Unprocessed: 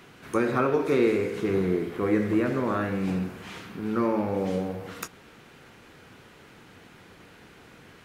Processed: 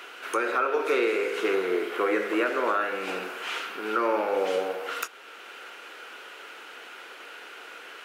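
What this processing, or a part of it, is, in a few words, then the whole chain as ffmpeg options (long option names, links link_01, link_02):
laptop speaker: -af "highpass=frequency=400:width=0.5412,highpass=frequency=400:width=1.3066,equalizer=frequency=1400:width_type=o:width=0.29:gain=8.5,equalizer=frequency=2800:width_type=o:width=0.52:gain=7,alimiter=limit=-21dB:level=0:latency=1:release=474,volume=6dB"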